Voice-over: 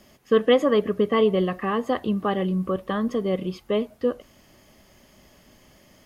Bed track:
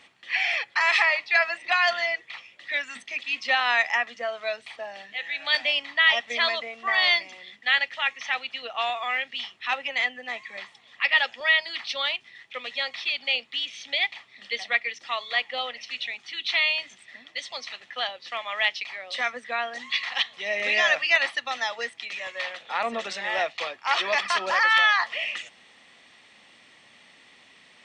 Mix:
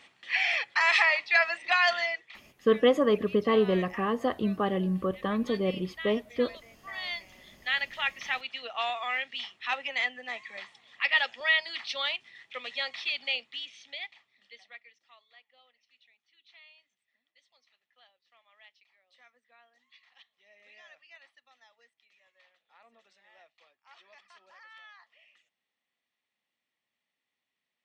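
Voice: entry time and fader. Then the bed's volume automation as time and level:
2.35 s, -4.0 dB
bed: 1.98 s -2 dB
2.76 s -19.5 dB
6.7 s -19.5 dB
7.98 s -4 dB
13.21 s -4 dB
15.42 s -33 dB

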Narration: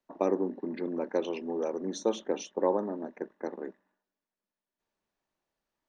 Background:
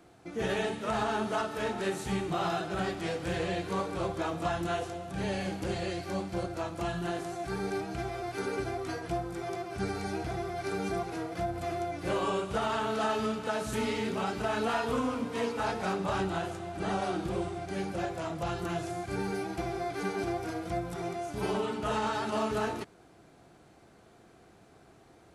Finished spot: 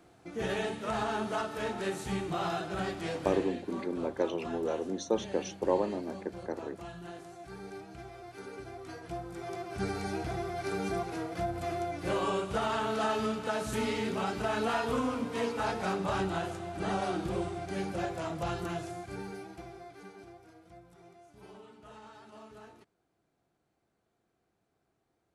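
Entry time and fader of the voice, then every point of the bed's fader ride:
3.05 s, -1.0 dB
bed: 3.21 s -2 dB
3.58 s -11 dB
8.61 s -11 dB
9.82 s -0.5 dB
18.54 s -0.5 dB
20.45 s -20.5 dB

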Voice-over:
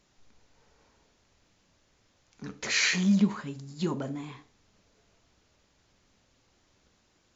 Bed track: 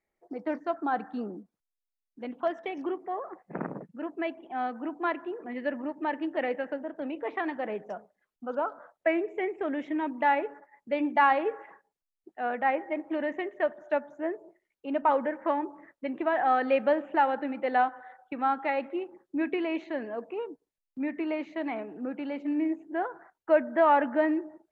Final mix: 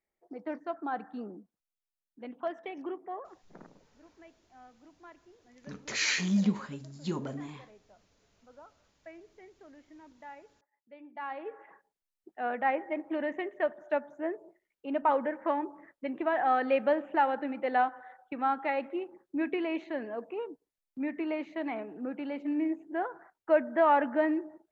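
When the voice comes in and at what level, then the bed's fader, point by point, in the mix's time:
3.25 s, -3.5 dB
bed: 3.14 s -5.5 dB
3.82 s -23 dB
11.03 s -23 dB
11.81 s -2 dB

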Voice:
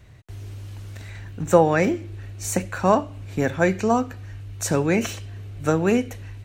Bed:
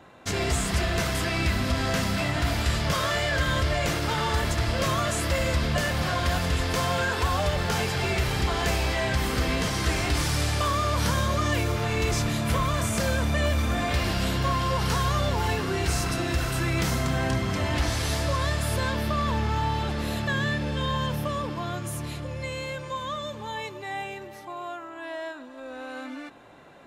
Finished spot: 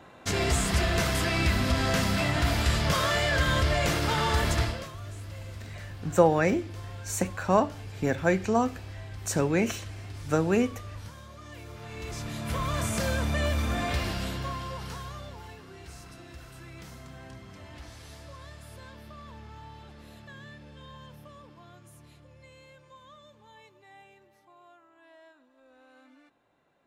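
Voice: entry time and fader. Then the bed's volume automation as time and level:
4.65 s, -4.5 dB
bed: 4.62 s 0 dB
4.96 s -22 dB
11.37 s -22 dB
12.79 s -3 dB
13.9 s -3 dB
15.56 s -20 dB

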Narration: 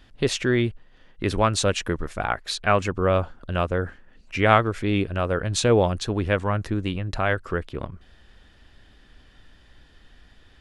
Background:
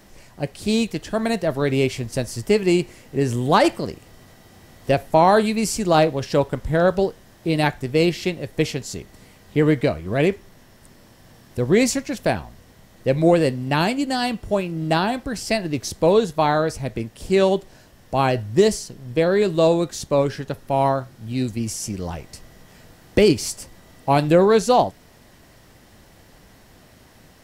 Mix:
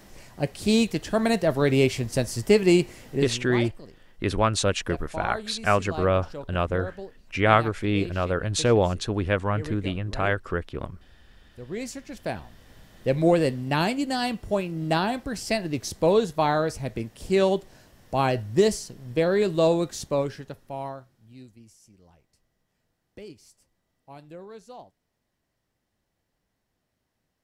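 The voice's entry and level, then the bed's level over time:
3.00 s, -1.5 dB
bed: 3.12 s -0.5 dB
3.48 s -19 dB
11.61 s -19 dB
12.75 s -4 dB
20 s -4 dB
21.79 s -28 dB

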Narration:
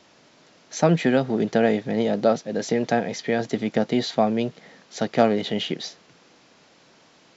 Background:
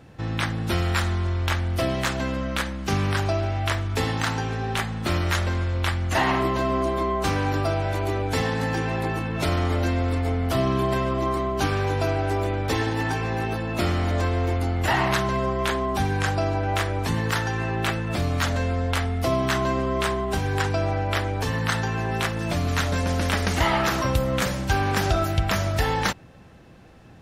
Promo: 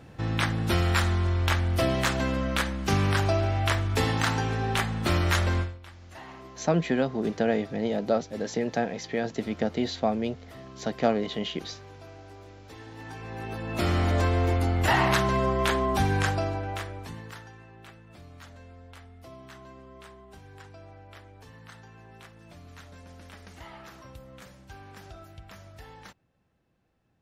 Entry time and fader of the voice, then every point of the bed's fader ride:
5.85 s, -5.5 dB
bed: 5.6 s -0.5 dB
5.8 s -23 dB
12.69 s -23 dB
13.96 s -0.5 dB
16.18 s -0.5 dB
17.67 s -24 dB

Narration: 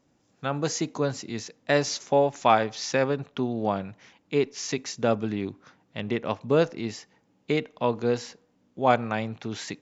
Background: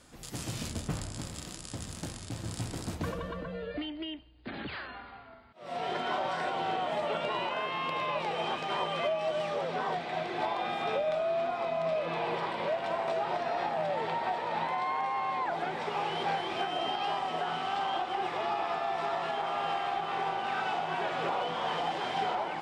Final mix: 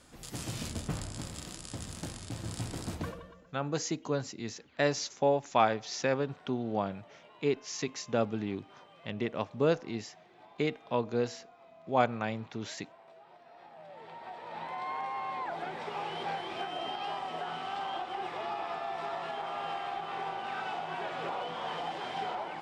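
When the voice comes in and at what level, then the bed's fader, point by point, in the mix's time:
3.10 s, -5.5 dB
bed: 3 s -1 dB
3.53 s -24.5 dB
13.42 s -24.5 dB
14.91 s -4.5 dB

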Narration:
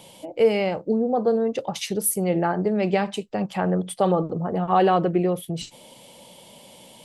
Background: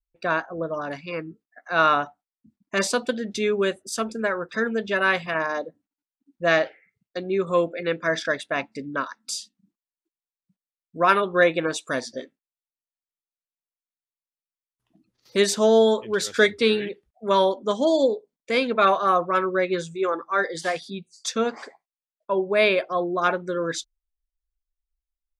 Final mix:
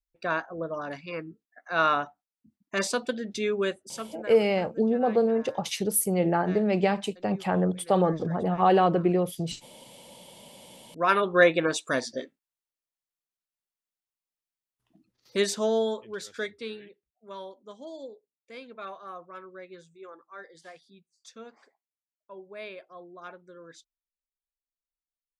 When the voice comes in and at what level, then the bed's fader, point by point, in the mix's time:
3.90 s, -2.0 dB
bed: 3.71 s -4.5 dB
4.7 s -23.5 dB
10.21 s -23.5 dB
11.28 s -0.5 dB
14.9 s -0.5 dB
17.12 s -21.5 dB

